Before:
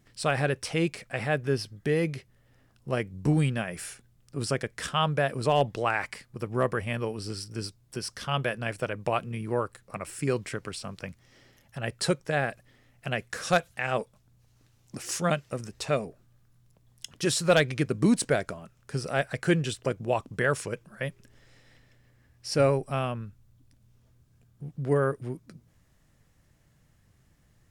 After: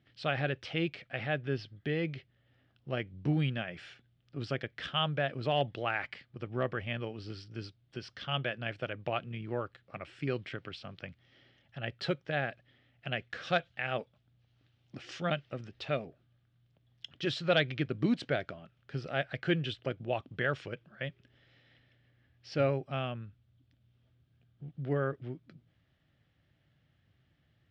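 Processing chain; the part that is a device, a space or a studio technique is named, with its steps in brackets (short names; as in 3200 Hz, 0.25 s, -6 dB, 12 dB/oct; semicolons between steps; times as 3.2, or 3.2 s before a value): guitar cabinet (speaker cabinet 79–4000 Hz, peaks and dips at 200 Hz -5 dB, 450 Hz -5 dB, 1000 Hz -9 dB, 3200 Hz +6 dB); gain -4.5 dB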